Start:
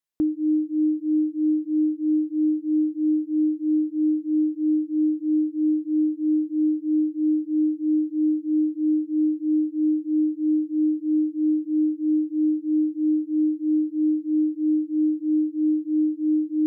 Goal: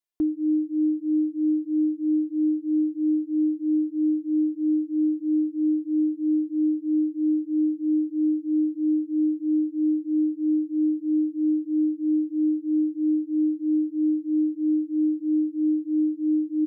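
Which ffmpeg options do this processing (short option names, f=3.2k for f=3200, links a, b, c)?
-af "aecho=1:1:2.9:0.65,volume=-5dB"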